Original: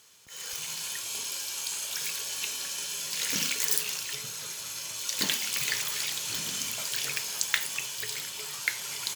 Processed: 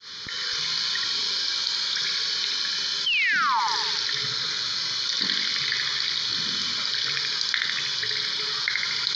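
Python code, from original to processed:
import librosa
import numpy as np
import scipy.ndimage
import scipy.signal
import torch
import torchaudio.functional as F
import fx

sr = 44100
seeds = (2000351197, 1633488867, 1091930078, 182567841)

p1 = fx.fade_in_head(x, sr, length_s=0.74)
p2 = scipy.signal.sosfilt(scipy.signal.butter(6, 4700.0, 'lowpass', fs=sr, output='sos'), p1)
p3 = fx.high_shelf(p2, sr, hz=2400.0, db=9.0)
p4 = fx.rider(p3, sr, range_db=10, speed_s=2.0)
p5 = fx.low_shelf(p4, sr, hz=170.0, db=-6.0)
p6 = fx.fixed_phaser(p5, sr, hz=2700.0, stages=6)
p7 = fx.spec_paint(p6, sr, seeds[0], shape='fall', start_s=3.06, length_s=0.54, low_hz=840.0, high_hz=3200.0, level_db=-20.0)
p8 = p7 + fx.echo_feedback(p7, sr, ms=77, feedback_pct=47, wet_db=-5.5, dry=0)
p9 = fx.env_flatten(p8, sr, amount_pct=70)
y = F.gain(torch.from_numpy(p9), -4.0).numpy()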